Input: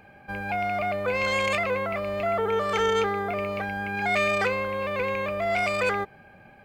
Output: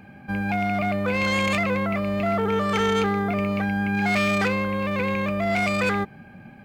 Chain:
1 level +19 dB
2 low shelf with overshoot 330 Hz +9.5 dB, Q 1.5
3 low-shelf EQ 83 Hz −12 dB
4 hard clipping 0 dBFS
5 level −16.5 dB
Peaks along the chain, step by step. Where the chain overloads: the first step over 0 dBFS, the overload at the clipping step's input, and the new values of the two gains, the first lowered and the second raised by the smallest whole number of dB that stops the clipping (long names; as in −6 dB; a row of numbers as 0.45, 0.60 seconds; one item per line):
+6.0, +7.5, +6.0, 0.0, −16.5 dBFS
step 1, 6.0 dB
step 1 +13 dB, step 5 −10.5 dB